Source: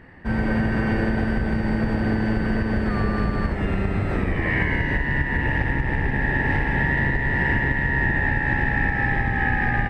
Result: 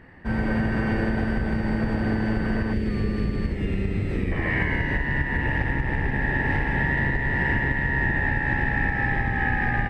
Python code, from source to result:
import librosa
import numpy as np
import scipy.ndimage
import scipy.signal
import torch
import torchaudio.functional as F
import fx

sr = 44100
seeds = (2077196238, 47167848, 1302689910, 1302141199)

y = fx.band_shelf(x, sr, hz=1000.0, db=-11.5, octaves=1.7, at=(2.73, 4.32))
y = F.gain(torch.from_numpy(y), -2.0).numpy()